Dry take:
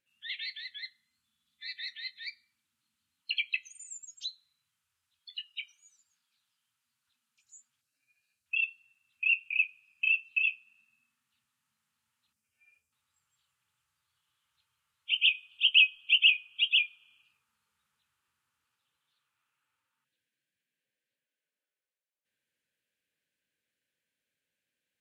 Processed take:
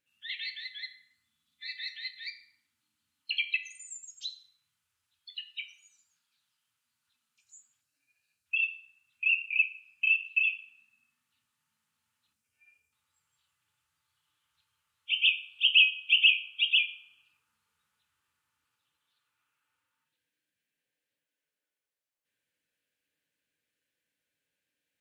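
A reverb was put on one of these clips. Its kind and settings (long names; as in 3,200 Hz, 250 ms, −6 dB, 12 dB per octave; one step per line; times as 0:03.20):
feedback delay network reverb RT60 0.8 s, low-frequency decay 0.75×, high-frequency decay 0.65×, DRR 6 dB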